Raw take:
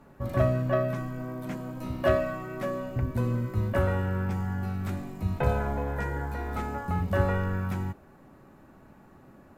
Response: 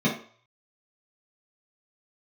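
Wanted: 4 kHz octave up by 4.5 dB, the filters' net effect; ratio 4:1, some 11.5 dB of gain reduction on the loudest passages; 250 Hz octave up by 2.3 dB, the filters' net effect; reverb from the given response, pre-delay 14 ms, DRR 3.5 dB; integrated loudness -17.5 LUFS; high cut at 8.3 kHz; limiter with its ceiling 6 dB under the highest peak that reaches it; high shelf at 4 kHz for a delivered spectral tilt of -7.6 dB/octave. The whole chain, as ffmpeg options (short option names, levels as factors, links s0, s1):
-filter_complex "[0:a]lowpass=8300,equalizer=f=250:t=o:g=3,highshelf=f=4000:g=3.5,equalizer=f=4000:t=o:g=4.5,acompressor=threshold=0.0251:ratio=4,alimiter=level_in=1.5:limit=0.0631:level=0:latency=1,volume=0.668,asplit=2[s0][s1];[1:a]atrim=start_sample=2205,adelay=14[s2];[s1][s2]afir=irnorm=-1:irlink=0,volume=0.15[s3];[s0][s3]amix=inputs=2:normalize=0,volume=4.22"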